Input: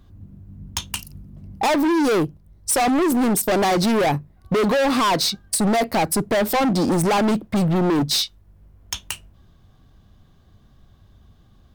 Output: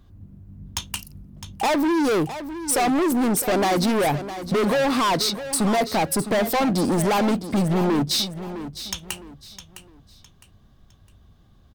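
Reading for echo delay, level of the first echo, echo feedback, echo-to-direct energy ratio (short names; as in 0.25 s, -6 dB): 0.659 s, -12.0 dB, 31%, -11.5 dB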